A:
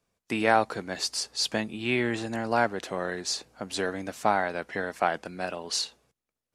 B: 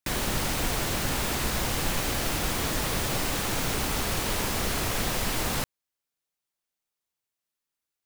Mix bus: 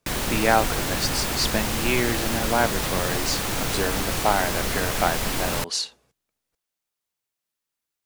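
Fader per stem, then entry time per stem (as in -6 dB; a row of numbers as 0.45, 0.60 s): +2.5, +2.0 dB; 0.00, 0.00 s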